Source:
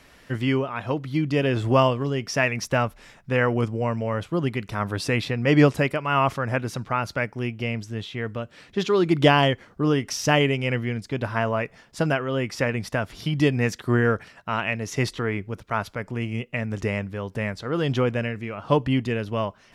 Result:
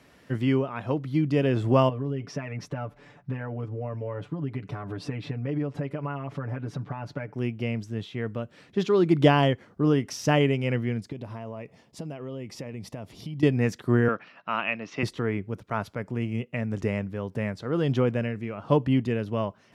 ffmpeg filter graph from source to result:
-filter_complex "[0:a]asettb=1/sr,asplit=3[a][b][c];[a]atrim=end=1.894[d];[b]atrim=start=1.89:end=7.34,asetpts=PTS-STARTPTS,afade=t=in:d=0.004:c=qsin,afade=t=out:st=5.446:d=0.004:c=qsin,aemphasis=mode=reproduction:type=75fm,acompressor=threshold=-29dB:ratio=12:attack=3.2:release=140:knee=1:detection=peak,aecho=1:1:6.9:0.83,atrim=end_sample=240345[e];[c]atrim=start=7.336[f];[d][e]acrossfade=d=0.004:c1=hsin:c2=qsin[g];[g][f]acrossfade=d=0.004:c1=qsin:c2=hsin,asettb=1/sr,asplit=3[h][i][j];[h]atrim=end=11.124[k];[i]atrim=start=11.12:end=13.43,asetpts=PTS-STARTPTS,afade=t=in:d=0.004:c=qsin,afade=t=out:st=2.306:d=0.004:c=qsin,equalizer=f=1.5k:t=o:w=0.52:g=-11,acompressor=threshold=-32dB:ratio=6:attack=3.2:release=140:knee=1:detection=peak[l];[j]atrim=start=13.426[m];[k][l]acrossfade=d=0.004:c1=hsin:c2=qsin[n];[n][m]acrossfade=d=0.004:c1=qsin:c2=hsin,asettb=1/sr,asplit=3[o][p][q];[o]atrim=end=14.084[r];[p]atrim=start=14.08:end=15.03,asetpts=PTS-STARTPTS,afade=t=in:d=0.004:c=qsin,afade=t=out:st=0.946:d=0.004:c=qsin,highpass=260,equalizer=f=420:t=q:w=4:g=-7,equalizer=f=1.2k:t=q:w=4:g=6,equalizer=f=2.6k:t=q:w=4:g=7,lowpass=f=4.8k:w=0.5412,lowpass=f=4.8k:w=1.3066,acompressor=mode=upward:threshold=-42dB:ratio=2.5:attack=3.2:release=140:knee=2.83:detection=peak[s];[q]atrim=start=15.026[t];[r][s]acrossfade=d=0.004:c1=hsin:c2=qsin[u];[u][t]acrossfade=d=0.004:c1=qsin:c2=hsin,highpass=100,tiltshelf=f=720:g=4,volume=-3dB"

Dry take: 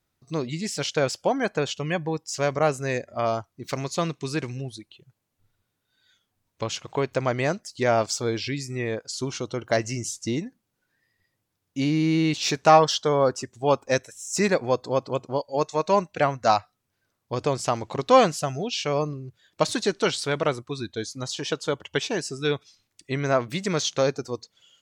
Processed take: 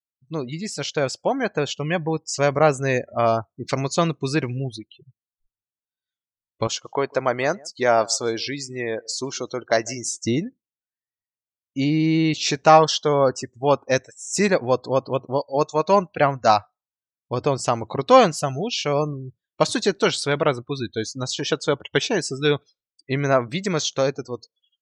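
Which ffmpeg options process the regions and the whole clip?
-filter_complex "[0:a]asettb=1/sr,asplit=3[a][b][c];[a]atrim=end=6.674[d];[b]atrim=start=6.67:end=10.19,asetpts=PTS-STARTPTS,afade=t=in:d=0.004:c=qsin,afade=t=out:st=3.516:d=0.004:c=qsin,highpass=f=470:p=1,equalizer=f=2.5k:t=o:w=0.66:g=-4.5,aecho=1:1:150:0.0668,atrim=end_sample=155232[e];[c]atrim=start=10.186[f];[d][e]acrossfade=d=0.004:c1=hsin:c2=qsin[g];[g][f]acrossfade=d=0.004:c1=qsin:c2=hsin,afftdn=nr=35:nf=-43,dynaudnorm=f=440:g=9:m=6.5dB"

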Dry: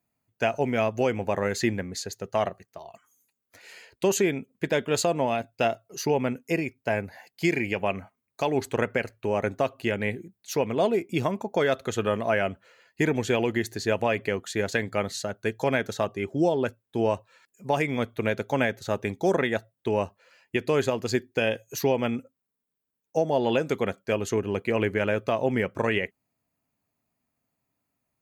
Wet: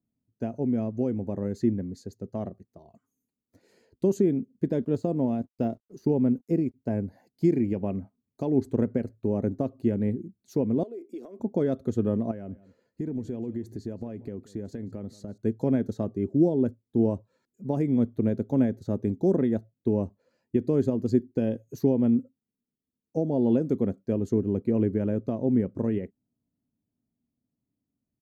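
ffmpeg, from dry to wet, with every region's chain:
-filter_complex "[0:a]asettb=1/sr,asplit=3[a][b][c];[a]atrim=end=4.824[d];[b]atrim=start=4.82:end=6.74,asetpts=PTS-STARTPTS,afade=t=in:d=0.004:c=qsin,afade=t=out:st=1.916:d=0.004:c=qsin,deesser=0.85,aeval=exprs='sgn(val(0))*max(abs(val(0))-0.00168,0)':c=same[e];[c]atrim=start=6.736[f];[d][e]acrossfade=d=0.004:c1=hsin:c2=qsin[g];[g][f]acrossfade=d=0.004:c1=qsin:c2=hsin,asettb=1/sr,asplit=3[h][i][j];[h]atrim=end=10.834[k];[i]atrim=start=10.83:end=11.4,asetpts=PTS-STARTPTS,afade=t=in:d=0.004:c=qsin,afade=t=out:st=0.566:d=0.004:c=qsin,highpass=f=380:w=0.5412,highpass=f=380:w=1.3066,acompressor=threshold=-34dB:ratio=5:attack=3.2:release=140:knee=1:detection=peak,equalizer=f=890:t=o:w=0.21:g=-11[l];[j]atrim=start=11.396[m];[k][l]acrossfade=d=0.004:c1=hsin:c2=qsin[n];[n][m]acrossfade=d=0.004:c1=qsin:c2=hsin,asettb=1/sr,asplit=3[o][p][q];[o]atrim=end=12.314[r];[p]atrim=start=12.31:end=15.38,asetpts=PTS-STARTPTS,afade=t=in:d=0.004:c=qsin,afade=t=out:st=3.066:d=0.004:c=qsin,acompressor=threshold=-36dB:ratio=2.5:attack=3.2:release=140:knee=1:detection=peak,aecho=1:1:180:0.112,atrim=end_sample=135387[s];[q]atrim=start=15.376[t];[r][s]acrossfade=d=0.004:c1=hsin:c2=qsin[u];[u][t]acrossfade=d=0.004:c1=qsin:c2=hsin,firequalizer=gain_entry='entry(160,0);entry(240,5);entry(420,-5);entry(740,-15);entry(1300,-21);entry(2700,-29);entry(4200,-20)':delay=0.05:min_phase=1,dynaudnorm=f=620:g=11:m=3.5dB"

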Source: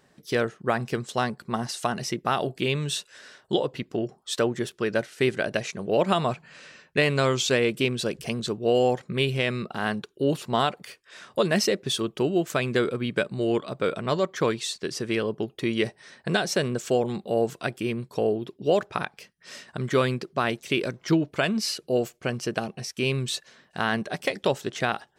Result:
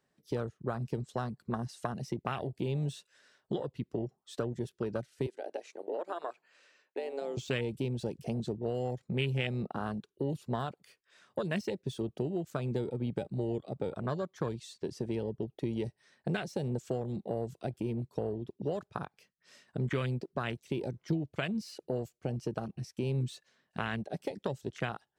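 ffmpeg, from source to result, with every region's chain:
-filter_complex "[0:a]asettb=1/sr,asplit=3[a][b][c];[a]atrim=end=5.264[d];[b]atrim=start=5.26:end=7.37,asetpts=PTS-STARTPTS,afade=t=in:d=0.004:c=qsin,afade=t=out:st=2.106:d=0.004:c=qsin,highpass=f=310:w=0.5412,highpass=f=310:w=1.3066,acompressor=threshold=-38dB:ratio=1.5:attack=3.2:release=140:knee=1:detection=peak[e];[c]atrim=start=7.366[f];[d][e]acrossfade=d=0.004:c1=hsin:c2=qsin[g];[g][f]acrossfade=d=0.004:c1=qsin:c2=hsin,deesser=0.6,afwtdn=0.0447,acrossover=split=130|3000[h][i][j];[i]acompressor=threshold=-33dB:ratio=6[k];[h][k][j]amix=inputs=3:normalize=0"

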